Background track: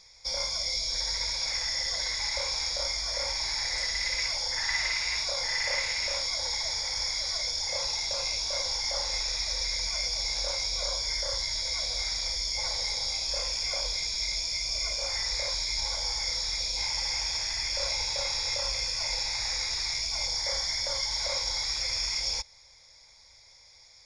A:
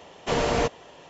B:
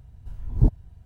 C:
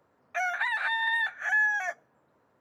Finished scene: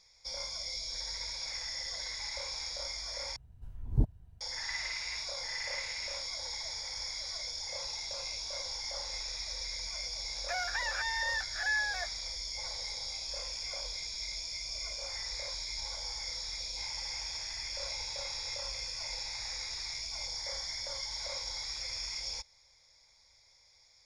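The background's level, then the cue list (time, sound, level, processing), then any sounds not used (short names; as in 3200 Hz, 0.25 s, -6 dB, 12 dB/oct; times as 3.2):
background track -8.5 dB
3.36 replace with B -9 dB
10.14 add C -7 dB + backlash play -48 dBFS
not used: A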